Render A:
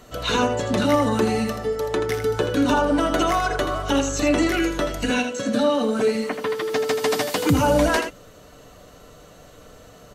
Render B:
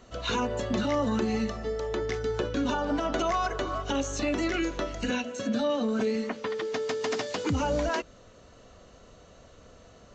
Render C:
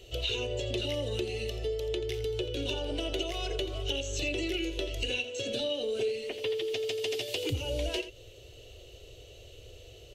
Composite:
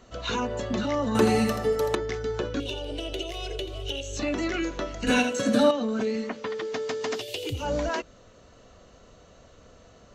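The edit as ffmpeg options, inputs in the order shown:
-filter_complex "[0:a]asplit=2[s0][s1];[2:a]asplit=2[s2][s3];[1:a]asplit=5[s4][s5][s6][s7][s8];[s4]atrim=end=1.152[s9];[s0]atrim=start=1.148:end=1.952[s10];[s5]atrim=start=1.948:end=2.602[s11];[s2]atrim=start=2.598:end=4.172[s12];[s6]atrim=start=4.168:end=5.072[s13];[s1]atrim=start=5.068:end=5.712[s14];[s7]atrim=start=5.708:end=7.23[s15];[s3]atrim=start=7.13:end=7.68[s16];[s8]atrim=start=7.58[s17];[s9][s10]acrossfade=d=0.004:c1=hsin:c2=hsin[s18];[s18][s11]acrossfade=d=0.004:c1=hsin:c2=hsin[s19];[s19][s12]acrossfade=d=0.004:c1=hsin:c2=hsin[s20];[s20][s13]acrossfade=d=0.004:c1=hsin:c2=hsin[s21];[s21][s14]acrossfade=d=0.004:c1=hsin:c2=hsin[s22];[s22][s15]acrossfade=d=0.004:c1=hsin:c2=hsin[s23];[s23][s16]acrossfade=d=0.1:c1=tri:c2=tri[s24];[s24][s17]acrossfade=d=0.1:c1=tri:c2=tri"

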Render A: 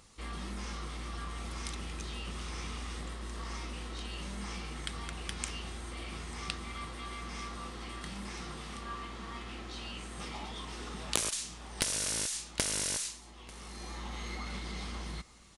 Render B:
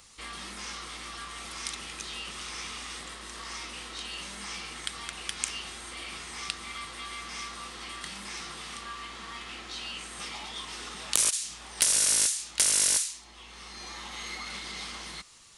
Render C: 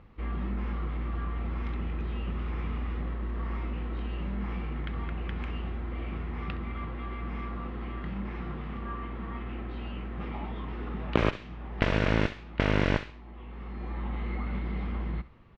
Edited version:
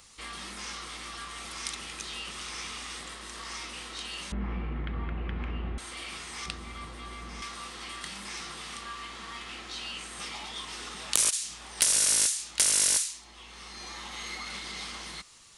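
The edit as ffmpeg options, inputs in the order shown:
-filter_complex "[1:a]asplit=3[s0][s1][s2];[s0]atrim=end=4.322[s3];[2:a]atrim=start=4.318:end=5.782[s4];[s1]atrim=start=5.778:end=6.462[s5];[0:a]atrim=start=6.458:end=7.422[s6];[s2]atrim=start=7.418[s7];[s3][s4]acrossfade=d=0.004:c1=hsin:c2=hsin[s8];[s8][s5]acrossfade=d=0.004:c1=hsin:c2=hsin[s9];[s9][s6]acrossfade=d=0.004:c1=hsin:c2=hsin[s10];[s10][s7]acrossfade=d=0.004:c1=hsin:c2=hsin"

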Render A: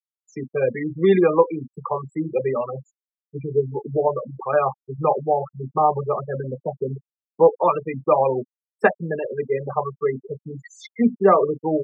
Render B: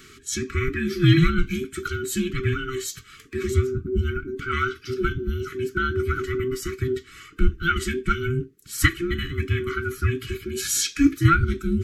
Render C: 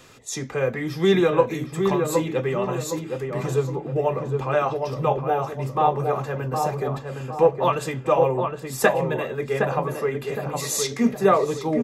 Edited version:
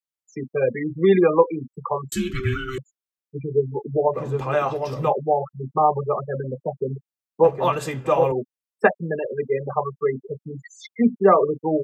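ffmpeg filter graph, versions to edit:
-filter_complex "[2:a]asplit=2[s0][s1];[0:a]asplit=4[s2][s3][s4][s5];[s2]atrim=end=2.122[s6];[1:a]atrim=start=2.118:end=2.782[s7];[s3]atrim=start=2.778:end=4.19[s8];[s0]atrim=start=4.13:end=5.13[s9];[s4]atrim=start=5.07:end=7.442[s10];[s1]atrim=start=7.438:end=8.322[s11];[s5]atrim=start=8.318[s12];[s6][s7]acrossfade=d=0.004:c1=hsin:c2=hsin[s13];[s13][s8]acrossfade=d=0.004:c1=hsin:c2=hsin[s14];[s14][s9]acrossfade=d=0.06:c1=tri:c2=tri[s15];[s15][s10]acrossfade=d=0.06:c1=tri:c2=tri[s16];[s16][s11]acrossfade=d=0.004:c1=hsin:c2=hsin[s17];[s17][s12]acrossfade=d=0.004:c1=hsin:c2=hsin"

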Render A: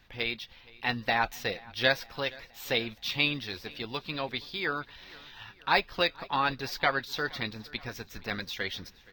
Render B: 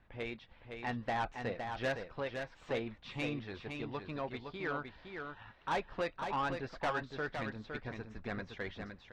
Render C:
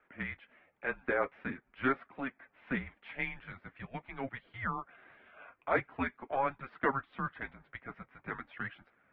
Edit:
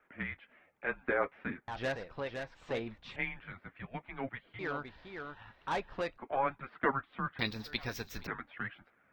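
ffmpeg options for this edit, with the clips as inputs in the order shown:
-filter_complex "[1:a]asplit=2[s0][s1];[2:a]asplit=4[s2][s3][s4][s5];[s2]atrim=end=1.682[s6];[s0]atrim=start=1.678:end=3.162[s7];[s3]atrim=start=3.158:end=4.592[s8];[s1]atrim=start=4.588:end=6.182[s9];[s4]atrim=start=6.178:end=7.392[s10];[0:a]atrim=start=7.388:end=8.272[s11];[s5]atrim=start=8.268[s12];[s6][s7]acrossfade=d=0.004:c1=hsin:c2=hsin[s13];[s13][s8]acrossfade=d=0.004:c1=hsin:c2=hsin[s14];[s14][s9]acrossfade=d=0.004:c1=hsin:c2=hsin[s15];[s15][s10]acrossfade=d=0.004:c1=hsin:c2=hsin[s16];[s16][s11]acrossfade=d=0.004:c1=hsin:c2=hsin[s17];[s17][s12]acrossfade=d=0.004:c1=hsin:c2=hsin"

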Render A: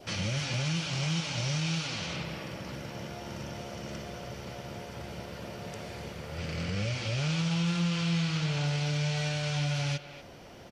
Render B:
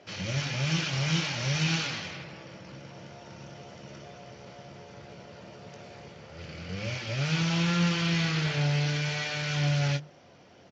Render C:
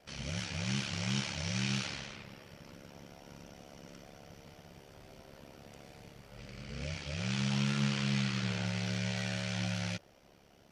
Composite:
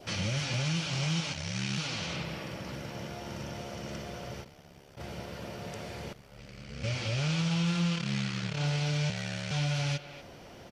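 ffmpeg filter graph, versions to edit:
-filter_complex "[2:a]asplit=5[s0][s1][s2][s3][s4];[0:a]asplit=6[s5][s6][s7][s8][s9][s10];[s5]atrim=end=1.332[s11];[s0]atrim=start=1.328:end=1.782[s12];[s6]atrim=start=1.778:end=4.47[s13];[s1]atrim=start=4.41:end=5.01[s14];[s7]atrim=start=4.95:end=6.132[s15];[s2]atrim=start=6.128:end=6.842[s16];[s8]atrim=start=6.838:end=8.09[s17];[s3]atrim=start=7.93:end=8.62[s18];[s9]atrim=start=8.46:end=9.102[s19];[s4]atrim=start=9.098:end=9.512[s20];[s10]atrim=start=9.508[s21];[s11][s12]acrossfade=d=0.004:c1=hsin:c2=hsin[s22];[s22][s13]acrossfade=d=0.004:c1=hsin:c2=hsin[s23];[s23][s14]acrossfade=d=0.06:c1=tri:c2=tri[s24];[s24][s15]acrossfade=d=0.06:c1=tri:c2=tri[s25];[s25][s16]acrossfade=d=0.004:c1=hsin:c2=hsin[s26];[s26][s17]acrossfade=d=0.004:c1=hsin:c2=hsin[s27];[s27][s18]acrossfade=d=0.16:c1=tri:c2=tri[s28];[s28][s19]acrossfade=d=0.16:c1=tri:c2=tri[s29];[s29][s20]acrossfade=d=0.004:c1=hsin:c2=hsin[s30];[s30][s21]acrossfade=d=0.004:c1=hsin:c2=hsin"

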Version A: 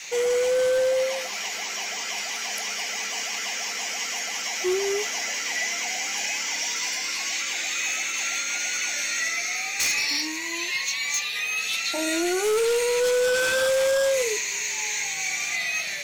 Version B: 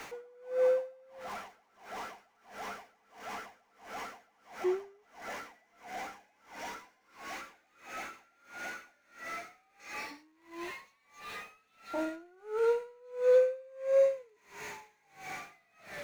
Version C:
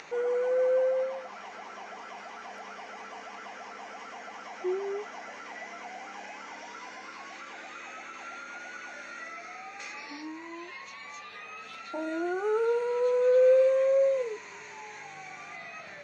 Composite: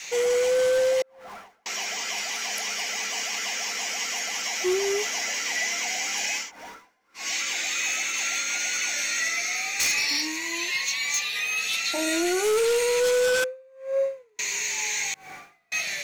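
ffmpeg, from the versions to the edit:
-filter_complex "[1:a]asplit=4[s0][s1][s2][s3];[0:a]asplit=5[s4][s5][s6][s7][s8];[s4]atrim=end=1.022[s9];[s0]atrim=start=1.018:end=1.662[s10];[s5]atrim=start=1.658:end=6.52[s11];[s1]atrim=start=6.36:end=7.3[s12];[s6]atrim=start=7.14:end=13.442[s13];[s2]atrim=start=13.438:end=14.392[s14];[s7]atrim=start=14.388:end=15.142[s15];[s3]atrim=start=15.138:end=15.722[s16];[s8]atrim=start=15.718[s17];[s9][s10]acrossfade=d=0.004:c1=hsin:c2=hsin[s18];[s18][s11]acrossfade=d=0.004:c1=hsin:c2=hsin[s19];[s19][s12]acrossfade=d=0.16:c1=tri:c2=tri[s20];[s20][s13]acrossfade=d=0.16:c1=tri:c2=tri[s21];[s21][s14]acrossfade=d=0.004:c1=hsin:c2=hsin[s22];[s22][s15]acrossfade=d=0.004:c1=hsin:c2=hsin[s23];[s23][s16]acrossfade=d=0.004:c1=hsin:c2=hsin[s24];[s24][s17]acrossfade=d=0.004:c1=hsin:c2=hsin"

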